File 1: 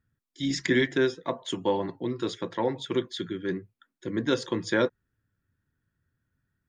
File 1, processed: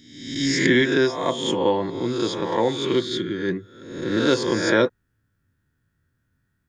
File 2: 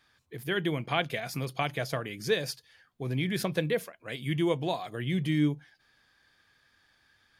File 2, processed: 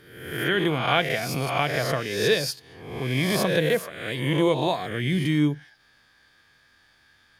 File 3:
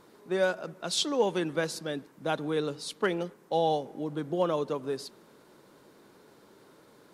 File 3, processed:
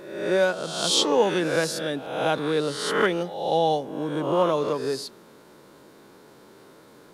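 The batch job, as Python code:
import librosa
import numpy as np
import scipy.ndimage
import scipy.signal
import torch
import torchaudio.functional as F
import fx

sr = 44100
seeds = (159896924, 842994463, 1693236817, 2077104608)

y = fx.spec_swells(x, sr, rise_s=0.86)
y = y * 10.0 ** (4.0 / 20.0)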